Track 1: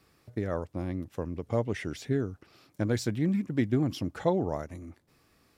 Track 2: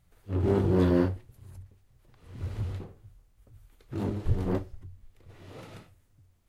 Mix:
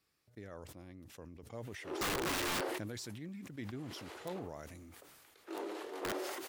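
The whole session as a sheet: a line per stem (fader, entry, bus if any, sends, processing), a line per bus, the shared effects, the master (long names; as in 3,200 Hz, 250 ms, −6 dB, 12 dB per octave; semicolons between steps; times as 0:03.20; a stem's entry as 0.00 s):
−10.0 dB, 0.00 s, no send, parametric band 870 Hz −5.5 dB 2.6 octaves
−0.5 dB, 1.55 s, no send, Chebyshev high-pass filter 330 Hz, order 4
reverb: not used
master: low-shelf EQ 400 Hz −10.5 dB; wrap-around overflow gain 30.5 dB; level that may fall only so fast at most 24 dB per second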